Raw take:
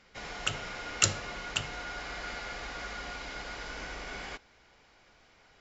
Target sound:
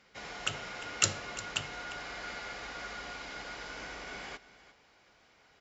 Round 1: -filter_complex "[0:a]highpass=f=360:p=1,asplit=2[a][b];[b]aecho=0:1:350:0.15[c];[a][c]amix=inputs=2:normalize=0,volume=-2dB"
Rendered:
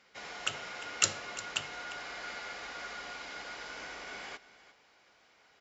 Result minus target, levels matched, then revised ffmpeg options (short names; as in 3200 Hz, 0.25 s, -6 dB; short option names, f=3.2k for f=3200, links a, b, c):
125 Hz band -7.5 dB
-filter_complex "[0:a]highpass=f=100:p=1,asplit=2[a][b];[b]aecho=0:1:350:0.15[c];[a][c]amix=inputs=2:normalize=0,volume=-2dB"